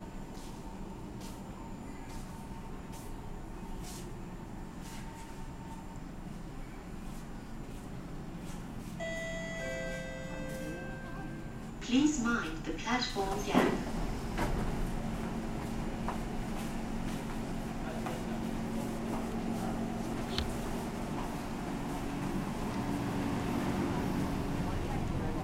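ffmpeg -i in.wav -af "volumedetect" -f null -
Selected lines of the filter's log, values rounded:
mean_volume: -36.3 dB
max_volume: -12.5 dB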